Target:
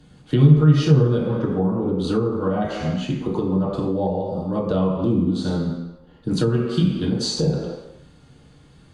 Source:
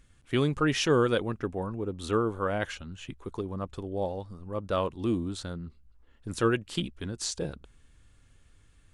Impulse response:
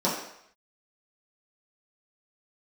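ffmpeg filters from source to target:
-filter_complex "[1:a]atrim=start_sample=2205,asetrate=36162,aresample=44100[s0];[0:a][s0]afir=irnorm=-1:irlink=0,acrossover=split=160[s1][s2];[s2]acompressor=threshold=0.0891:ratio=10[s3];[s1][s3]amix=inputs=2:normalize=0"

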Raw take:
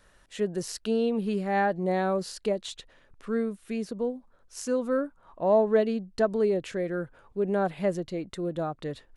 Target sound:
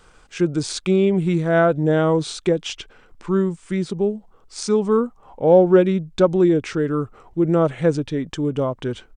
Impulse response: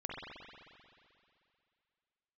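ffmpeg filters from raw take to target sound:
-af "asetrate=37084,aresample=44100,atempo=1.18921,volume=2.82"

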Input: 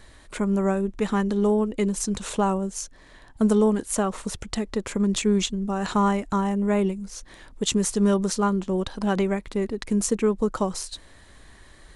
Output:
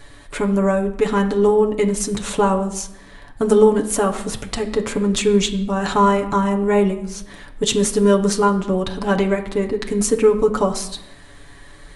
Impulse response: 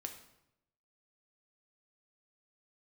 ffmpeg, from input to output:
-filter_complex "[0:a]asplit=2[s0][s1];[s1]equalizer=f=6600:t=o:w=0.74:g=-11.5[s2];[1:a]atrim=start_sample=2205,adelay=7[s3];[s2][s3]afir=irnorm=-1:irlink=0,volume=1.41[s4];[s0][s4]amix=inputs=2:normalize=0,volume=1.58"

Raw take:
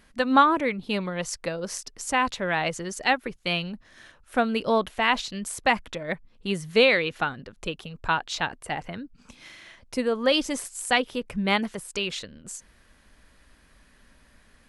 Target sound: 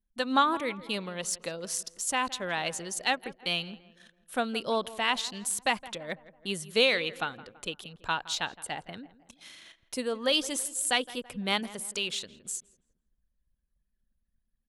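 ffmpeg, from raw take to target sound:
-filter_complex "[0:a]aexciter=amount=1.7:drive=7.5:freq=3000,anlmdn=0.0398,lowshelf=f=100:g=-10.5,asplit=2[s0][s1];[s1]adelay=166,lowpass=f=1900:p=1,volume=0.141,asplit=2[s2][s3];[s3]adelay=166,lowpass=f=1900:p=1,volume=0.5,asplit=2[s4][s5];[s5]adelay=166,lowpass=f=1900:p=1,volume=0.5,asplit=2[s6][s7];[s7]adelay=166,lowpass=f=1900:p=1,volume=0.5[s8];[s0][s2][s4][s6][s8]amix=inputs=5:normalize=0,volume=0.501"

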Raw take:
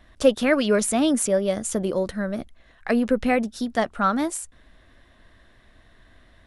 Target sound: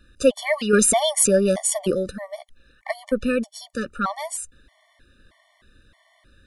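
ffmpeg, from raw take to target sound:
-filter_complex "[0:a]asettb=1/sr,asplit=3[s0][s1][s2];[s0]atrim=end=0.734[s3];[s1]atrim=start=0.73:end=1.95,asetpts=PTS-STARTPTS,afade=t=in:d=0.004:c=qsin,afade=t=out:st=1.216:d=0.004:c=qsin,acontrast=67[s4];[s2]atrim=start=1.946[s5];[s3][s4]acrossfade=d=0.004:c1=hsin:c2=qsin[s6];[s6][s5]acrossfade=d=0.004:c1=qsin:c2=hsin,highshelf=f=2900:g=5.5,afftfilt=real='re*gt(sin(2*PI*1.6*pts/sr)*(1-2*mod(floor(b*sr/1024/590),2)),0)':imag='im*gt(sin(2*PI*1.6*pts/sr)*(1-2*mod(floor(b*sr/1024/590),2)),0)':win_size=1024:overlap=0.75"

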